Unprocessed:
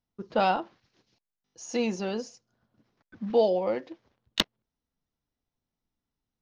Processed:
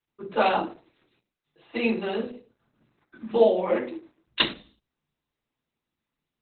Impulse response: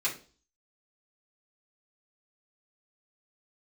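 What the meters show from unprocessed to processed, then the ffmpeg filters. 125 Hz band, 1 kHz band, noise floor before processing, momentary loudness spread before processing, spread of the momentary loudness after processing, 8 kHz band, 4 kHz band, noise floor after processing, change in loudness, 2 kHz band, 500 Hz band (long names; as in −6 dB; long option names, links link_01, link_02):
can't be measured, +2.0 dB, below −85 dBFS, 15 LU, 19 LU, below −35 dB, +3.0 dB, below −85 dBFS, +3.0 dB, +6.0 dB, +3.0 dB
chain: -filter_complex "[1:a]atrim=start_sample=2205,afade=type=out:start_time=0.44:duration=0.01,atrim=end_sample=19845[link_01];[0:a][link_01]afir=irnorm=-1:irlink=0" -ar 48000 -c:a libopus -b:a 8k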